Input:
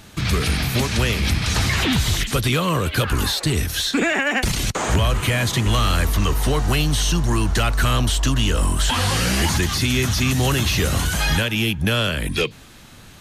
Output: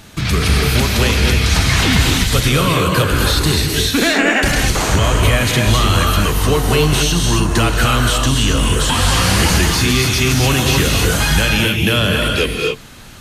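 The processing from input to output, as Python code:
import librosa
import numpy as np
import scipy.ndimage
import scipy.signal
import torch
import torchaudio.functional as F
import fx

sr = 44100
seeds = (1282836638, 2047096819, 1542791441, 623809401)

y = fx.rev_gated(x, sr, seeds[0], gate_ms=300, shape='rising', drr_db=0.5)
y = F.gain(torch.from_numpy(y), 3.5).numpy()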